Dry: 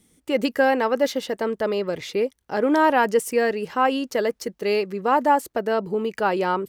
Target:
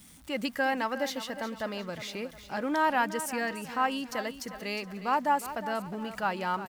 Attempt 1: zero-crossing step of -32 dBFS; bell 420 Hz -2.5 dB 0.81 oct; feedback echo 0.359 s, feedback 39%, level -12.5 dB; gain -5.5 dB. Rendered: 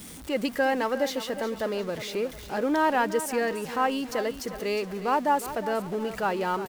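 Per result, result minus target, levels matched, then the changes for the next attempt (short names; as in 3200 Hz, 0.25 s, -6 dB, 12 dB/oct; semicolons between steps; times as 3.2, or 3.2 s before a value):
zero-crossing step: distortion +10 dB; 500 Hz band +3.5 dB
change: zero-crossing step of -43 dBFS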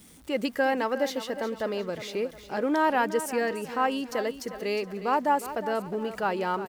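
500 Hz band +4.0 dB
change: bell 420 Hz -13.5 dB 0.81 oct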